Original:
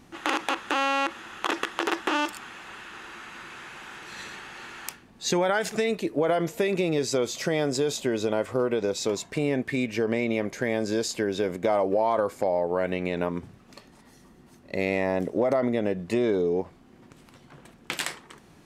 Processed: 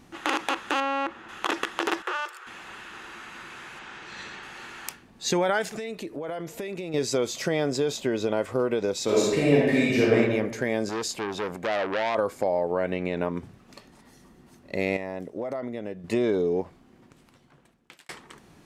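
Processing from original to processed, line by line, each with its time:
0.8–1.29 LPF 1400 Hz 6 dB/oct
2.02–2.47 rippled Chebyshev high-pass 350 Hz, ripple 9 dB
3.79–4.43 LPF 6100 Hz
5.62–6.94 compressor 3:1, threshold -33 dBFS
7.48–8.37 bell 10000 Hz -5.5 dB 1.1 oct
9.04–10.16 reverb throw, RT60 1.2 s, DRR -6 dB
10.89–12.15 core saturation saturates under 1900 Hz
12.72–13.37 high shelf 4200 Hz -6 dB
14.97–16.04 gain -8.5 dB
16.61–18.09 fade out

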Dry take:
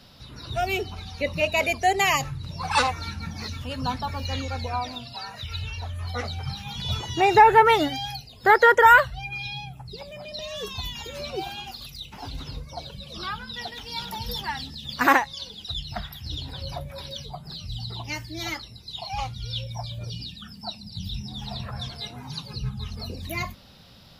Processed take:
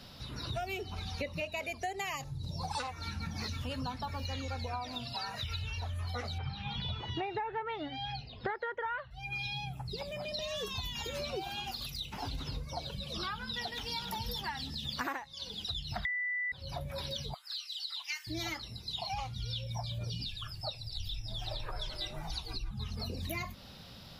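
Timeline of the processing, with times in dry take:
2.24–2.8 band shelf 1800 Hz -13.5 dB
6.38–9.11 LPF 3800 Hz 24 dB/oct
16.05–16.52 bleep 1980 Hz -13.5 dBFS
17.34–18.27 inverse Chebyshev high-pass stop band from 400 Hz, stop band 60 dB
20.25–22.71 frequency shift -96 Hz
whole clip: compressor 12:1, threshold -34 dBFS

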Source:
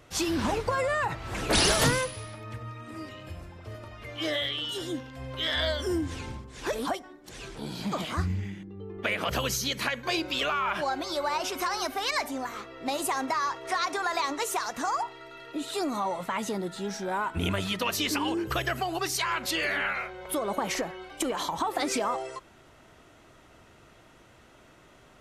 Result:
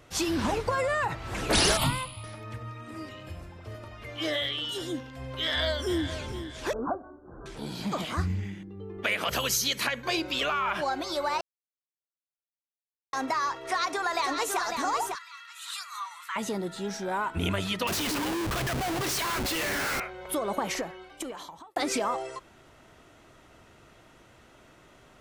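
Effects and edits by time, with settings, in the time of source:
1.77–2.24 fixed phaser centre 1700 Hz, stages 6
5.41–6.04 echo throw 0.46 s, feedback 40%, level -11 dB
6.73–7.46 steep low-pass 1500 Hz 96 dB/oct
9.04–9.87 tilt +1.5 dB/oct
11.41–13.13 mute
13.64–14.63 echo throw 0.55 s, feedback 25%, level -5.5 dB
15.15–16.36 steep high-pass 1100 Hz 48 dB/oct
17.87–20 Schmitt trigger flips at -38 dBFS
20.59–21.76 fade out

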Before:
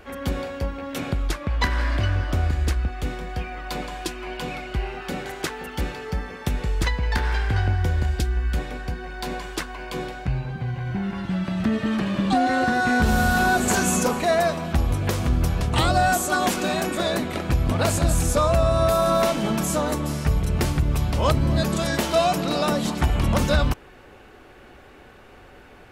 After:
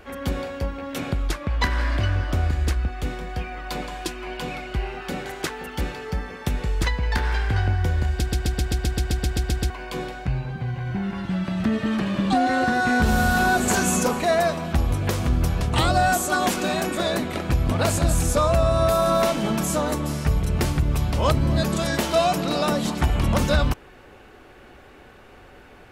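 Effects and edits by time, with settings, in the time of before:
8.14 stutter in place 0.13 s, 12 plays

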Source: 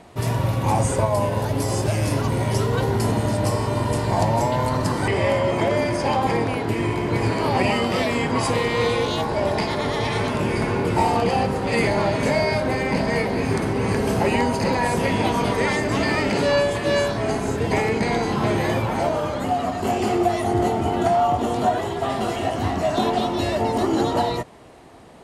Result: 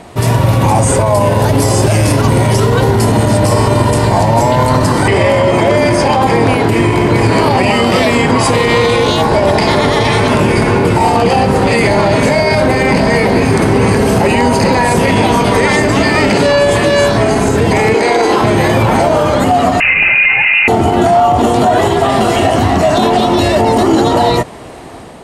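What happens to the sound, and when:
17.94–18.42 resonant low shelf 250 Hz -13 dB, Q 1.5
19.8–20.68 inverted band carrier 2800 Hz
whole clip: AGC gain up to 4 dB; bell 8500 Hz +3 dB 0.21 oct; maximiser +13 dB; gain -1 dB

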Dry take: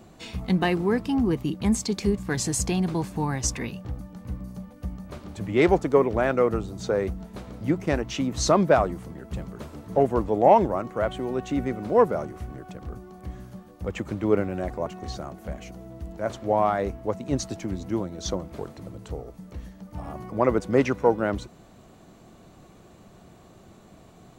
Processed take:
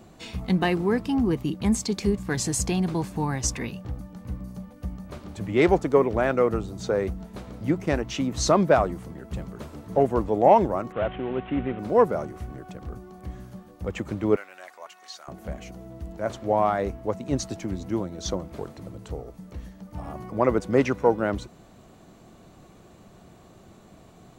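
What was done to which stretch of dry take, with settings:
10.92–11.79 CVSD 16 kbps
14.36–15.28 HPF 1400 Hz

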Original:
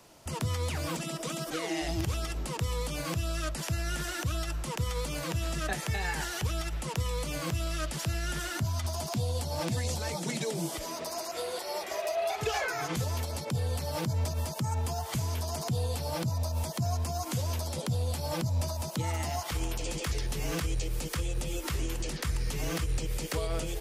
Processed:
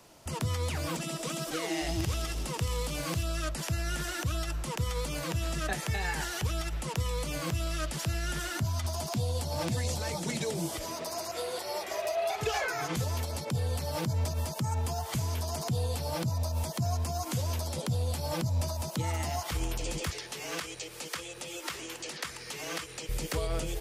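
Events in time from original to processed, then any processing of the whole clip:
0.93–3.23 thin delay 84 ms, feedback 83%, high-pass 3300 Hz, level -7.5 dB
9–9.76 echo throw 0.39 s, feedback 70%, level -17.5 dB
20.1–23.09 weighting filter A

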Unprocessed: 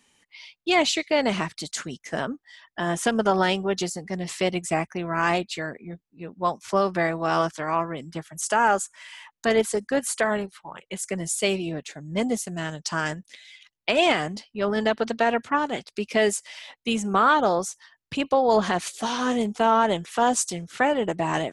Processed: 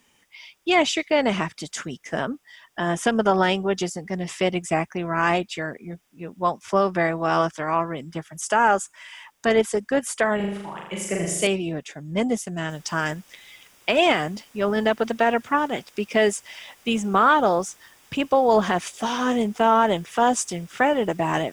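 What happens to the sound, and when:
10.36–11.47 flutter echo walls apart 6.9 m, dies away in 0.87 s
12.7 noise floor step -67 dB -53 dB
whole clip: high shelf 8600 Hz -8.5 dB; notch 4200 Hz, Q 5.6; gain +2 dB

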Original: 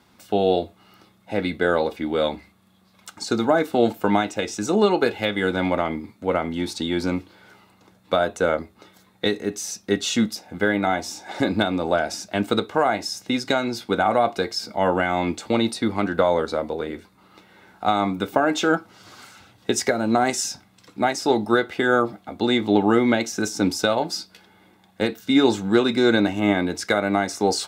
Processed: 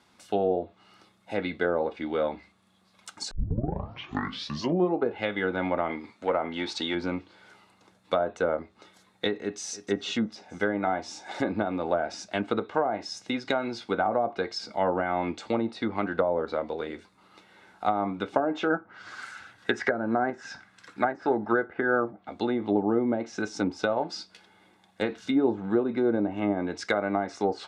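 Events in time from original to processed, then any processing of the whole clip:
3.31 tape start 1.74 s
5.89–6.95 overdrive pedal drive 11 dB, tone 4200 Hz, clips at -8.5 dBFS
9.41–9.81 echo throw 0.31 s, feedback 50%, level -15 dB
18.7–22.11 bell 1600 Hz +14 dB 0.68 oct
25.07–25.66 G.711 law mismatch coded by mu
whole clip: LPF 11000 Hz 24 dB/oct; treble ducked by the level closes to 680 Hz, closed at -14.5 dBFS; low shelf 320 Hz -6.5 dB; gain -3 dB

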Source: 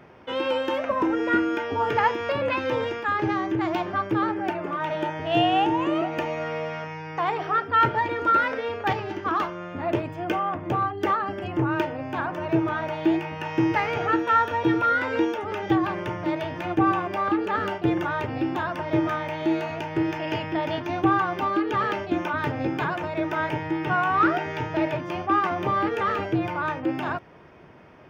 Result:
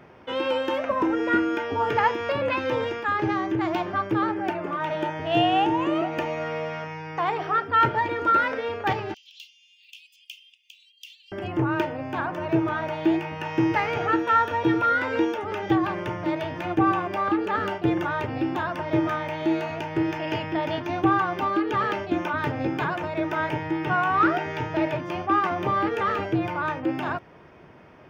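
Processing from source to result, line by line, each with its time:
9.14–11.32 steep high-pass 2700 Hz 72 dB/oct

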